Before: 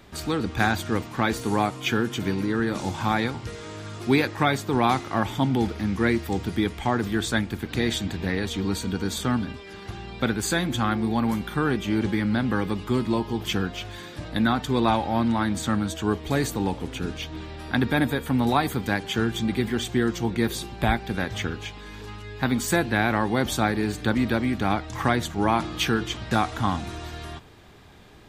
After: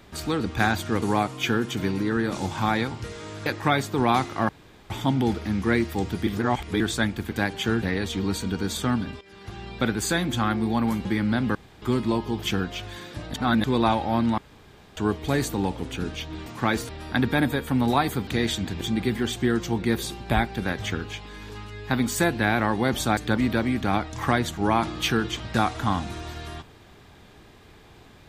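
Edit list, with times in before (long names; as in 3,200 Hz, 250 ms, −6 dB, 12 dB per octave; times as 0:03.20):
0:01.02–0:01.45: move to 0:17.48
0:03.89–0:04.21: remove
0:05.24: splice in room tone 0.41 s
0:06.61–0:07.14: reverse
0:07.70–0:08.24: swap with 0:18.86–0:19.33
0:09.62–0:10.05: fade in, from −12.5 dB
0:11.46–0:12.07: remove
0:12.57–0:12.84: fill with room tone
0:14.36–0:14.66: reverse
0:15.40–0:15.99: fill with room tone
0:23.69–0:23.94: remove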